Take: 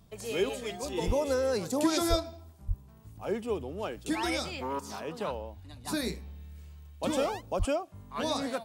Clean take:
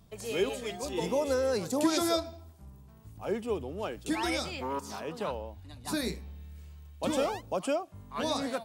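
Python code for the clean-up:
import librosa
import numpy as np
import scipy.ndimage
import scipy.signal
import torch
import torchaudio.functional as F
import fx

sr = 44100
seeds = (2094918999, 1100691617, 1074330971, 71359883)

y = fx.fix_deplosive(x, sr, at_s=(1.06, 2.09, 2.67, 7.58))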